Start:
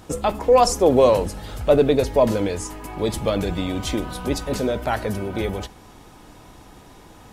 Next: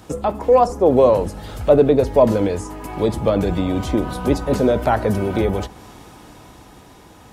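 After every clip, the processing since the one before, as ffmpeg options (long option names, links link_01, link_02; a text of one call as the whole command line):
ffmpeg -i in.wav -filter_complex "[0:a]acrossover=split=560|1400[link_01][link_02][link_03];[link_03]acompressor=threshold=-42dB:ratio=5[link_04];[link_01][link_02][link_04]amix=inputs=3:normalize=0,highpass=46,dynaudnorm=framelen=260:gausssize=13:maxgain=6dB,volume=1.5dB" out.wav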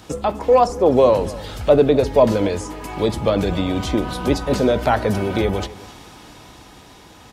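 ffmpeg -i in.wav -filter_complex "[0:a]acrossover=split=5100[link_01][link_02];[link_01]crystalizer=i=4:c=0[link_03];[link_03][link_02]amix=inputs=2:normalize=0,aecho=1:1:255:0.112,volume=-1dB" out.wav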